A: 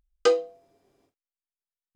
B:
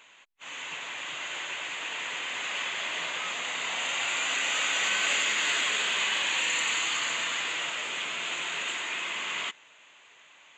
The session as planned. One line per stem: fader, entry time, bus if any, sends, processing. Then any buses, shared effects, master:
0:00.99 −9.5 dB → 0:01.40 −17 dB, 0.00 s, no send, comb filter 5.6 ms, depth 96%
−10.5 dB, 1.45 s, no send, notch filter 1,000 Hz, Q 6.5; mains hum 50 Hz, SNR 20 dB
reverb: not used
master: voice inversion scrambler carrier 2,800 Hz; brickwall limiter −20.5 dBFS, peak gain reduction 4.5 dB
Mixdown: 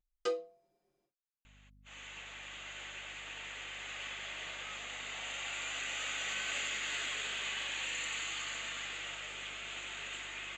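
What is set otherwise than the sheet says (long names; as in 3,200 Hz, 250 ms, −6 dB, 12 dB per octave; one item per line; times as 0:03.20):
stem A −9.5 dB → −16.0 dB
master: missing voice inversion scrambler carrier 2,800 Hz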